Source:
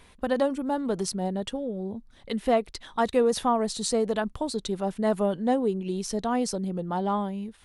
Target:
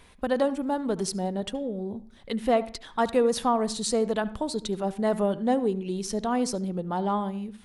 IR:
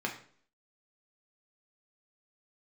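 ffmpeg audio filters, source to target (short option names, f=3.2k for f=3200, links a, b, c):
-filter_complex "[0:a]asplit=2[a][b];[1:a]atrim=start_sample=2205,adelay=72[c];[b][c]afir=irnorm=-1:irlink=0,volume=-21dB[d];[a][d]amix=inputs=2:normalize=0"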